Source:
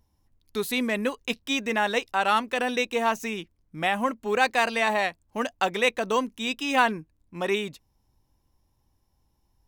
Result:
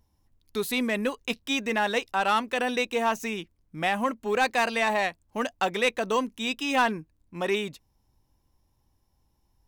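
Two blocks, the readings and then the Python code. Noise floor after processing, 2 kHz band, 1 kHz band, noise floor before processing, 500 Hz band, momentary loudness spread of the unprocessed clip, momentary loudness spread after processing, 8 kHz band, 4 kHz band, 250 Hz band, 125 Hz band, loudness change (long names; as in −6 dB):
−71 dBFS, −1.5 dB, −1.0 dB, −71 dBFS, −1.0 dB, 10 LU, 9 LU, −0.5 dB, −1.0 dB, −0.5 dB, 0.0 dB, −1.0 dB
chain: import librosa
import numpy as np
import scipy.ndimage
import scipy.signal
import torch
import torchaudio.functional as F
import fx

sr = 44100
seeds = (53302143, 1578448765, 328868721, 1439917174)

y = 10.0 ** (-14.0 / 20.0) * np.tanh(x / 10.0 ** (-14.0 / 20.0))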